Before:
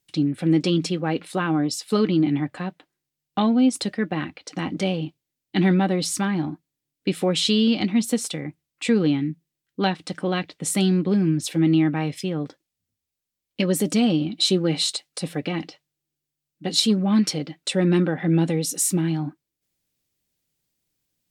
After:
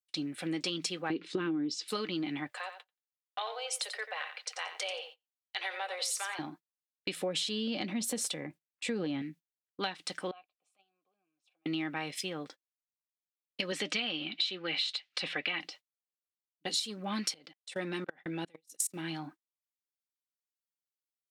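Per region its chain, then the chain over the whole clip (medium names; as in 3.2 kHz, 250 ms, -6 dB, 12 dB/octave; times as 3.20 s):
1.10–1.88 s: low-pass 6 kHz 24 dB/octave + resonant low shelf 490 Hz +11 dB, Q 3 + compression 2.5:1, threshold -8 dBFS
2.51–6.39 s: steep high-pass 440 Hz 72 dB/octave + compression 2:1, threshold -30 dBFS + feedback delay 89 ms, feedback 16%, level -10 dB
7.15–9.22 s: tilt shelf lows +6 dB, about 660 Hz + transient shaper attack -2 dB, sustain +5 dB + small resonant body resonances 570/1700 Hz, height 7 dB
10.31–11.66 s: vowel filter a + compression 3:1, threshold -48 dBFS
13.72–15.61 s: band-pass 110–3500 Hz + peaking EQ 2.6 kHz +11 dB 2.2 oct
17.34–18.96 s: peaking EQ 79 Hz -9 dB 0.81 oct + level held to a coarse grid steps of 22 dB + transient shaper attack 0 dB, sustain -10 dB
whole clip: high-pass 1.4 kHz 6 dB/octave; gate -50 dBFS, range -22 dB; compression 10:1, threshold -30 dBFS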